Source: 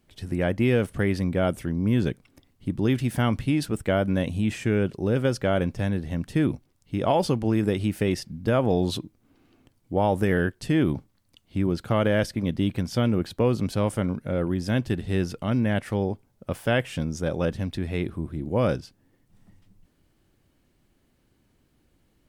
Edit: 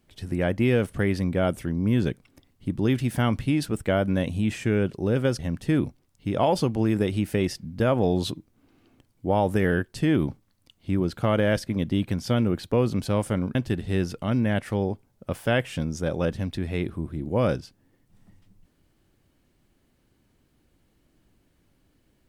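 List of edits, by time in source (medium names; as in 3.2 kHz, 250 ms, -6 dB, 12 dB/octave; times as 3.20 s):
5.39–6.06 s: delete
14.22–14.75 s: delete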